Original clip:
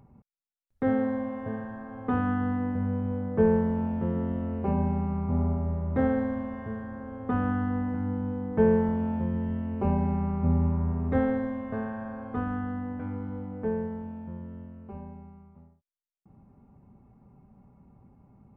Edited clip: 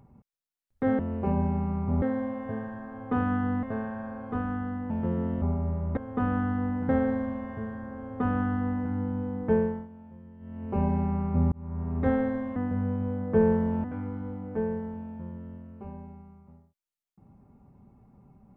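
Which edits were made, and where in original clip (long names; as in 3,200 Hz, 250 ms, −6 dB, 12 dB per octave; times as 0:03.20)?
0:02.60–0:03.88: swap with 0:11.65–0:12.92
0:04.40–0:05.43: move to 0:00.99
0:07.09–0:08.01: duplicate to 0:05.98
0:08.51–0:09.94: duck −19 dB, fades 0.46 s
0:10.61–0:11.08: fade in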